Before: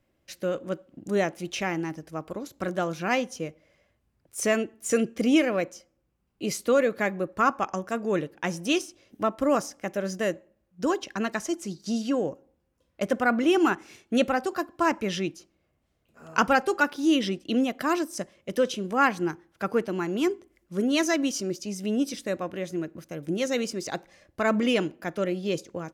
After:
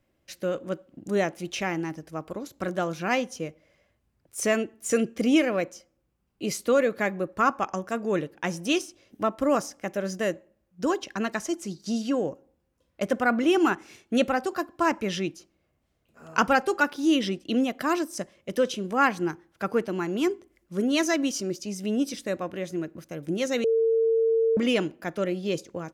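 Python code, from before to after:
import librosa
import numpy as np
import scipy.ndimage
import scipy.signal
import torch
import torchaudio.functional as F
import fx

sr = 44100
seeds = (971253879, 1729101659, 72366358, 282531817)

y = fx.edit(x, sr, fx.bleep(start_s=23.64, length_s=0.93, hz=452.0, db=-19.0), tone=tone)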